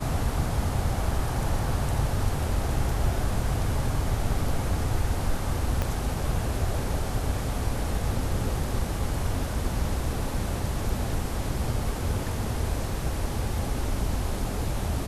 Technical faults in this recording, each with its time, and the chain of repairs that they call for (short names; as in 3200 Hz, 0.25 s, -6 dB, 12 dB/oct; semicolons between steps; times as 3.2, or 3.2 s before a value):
5.82 pop -13 dBFS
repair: de-click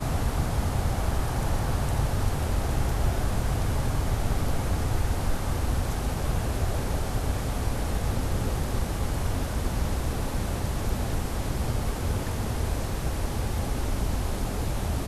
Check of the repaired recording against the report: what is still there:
5.82 pop